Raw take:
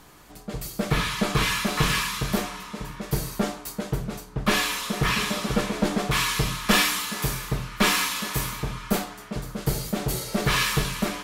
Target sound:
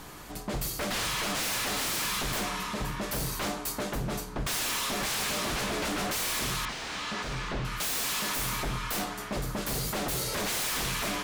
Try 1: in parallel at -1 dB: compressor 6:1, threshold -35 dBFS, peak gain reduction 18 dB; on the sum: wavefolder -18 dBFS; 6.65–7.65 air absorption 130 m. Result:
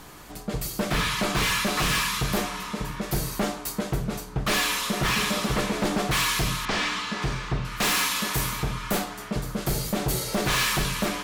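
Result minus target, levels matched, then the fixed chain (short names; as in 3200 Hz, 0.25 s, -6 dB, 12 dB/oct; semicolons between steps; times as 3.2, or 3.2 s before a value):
wavefolder: distortion -13 dB
in parallel at -1 dB: compressor 6:1, threshold -35 dBFS, peak gain reduction 18 dB; on the sum: wavefolder -26 dBFS; 6.65–7.65 air absorption 130 m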